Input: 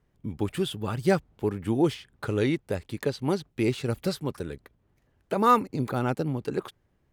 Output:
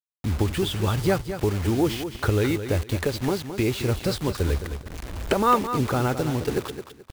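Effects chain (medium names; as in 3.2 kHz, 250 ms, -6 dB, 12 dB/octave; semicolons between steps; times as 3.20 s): recorder AGC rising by 17 dB/s; low-pass 8.6 kHz; resonant low shelf 100 Hz +11 dB, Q 1.5; in parallel at +1 dB: peak limiter -34.5 dBFS, peak gain reduction 27 dB; on the sum: bit crusher 6-bit; on a send: feedback delay 215 ms, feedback 25%, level -10 dB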